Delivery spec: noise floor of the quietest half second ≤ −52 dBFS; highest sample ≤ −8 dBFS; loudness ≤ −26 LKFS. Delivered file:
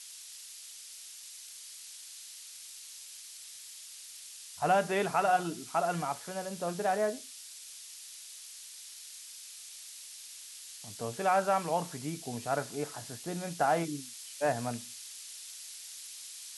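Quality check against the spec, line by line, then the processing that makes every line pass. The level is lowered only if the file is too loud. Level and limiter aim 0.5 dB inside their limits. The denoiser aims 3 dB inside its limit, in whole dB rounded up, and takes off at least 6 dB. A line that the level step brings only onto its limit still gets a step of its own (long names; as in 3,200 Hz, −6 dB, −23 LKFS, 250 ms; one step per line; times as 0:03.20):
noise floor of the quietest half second −48 dBFS: out of spec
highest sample −16.0 dBFS: in spec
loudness −35.5 LKFS: in spec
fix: broadband denoise 7 dB, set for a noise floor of −48 dBFS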